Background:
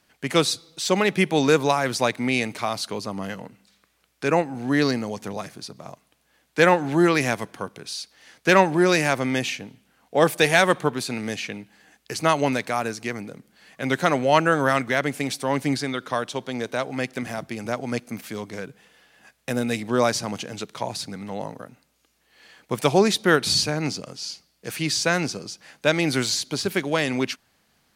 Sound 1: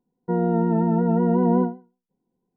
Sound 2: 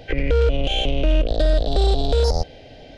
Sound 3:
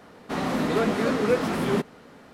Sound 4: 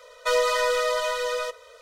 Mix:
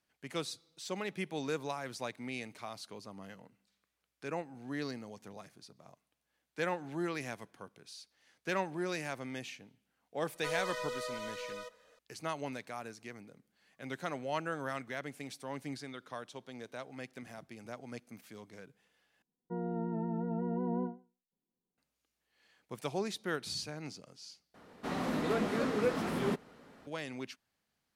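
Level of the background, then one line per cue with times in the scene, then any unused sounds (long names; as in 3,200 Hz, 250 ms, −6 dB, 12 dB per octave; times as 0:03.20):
background −18 dB
0:10.18: mix in 4 −16 dB
0:19.22: overwrite with 1 −15.5 dB
0:24.54: overwrite with 3 −8.5 dB
not used: 2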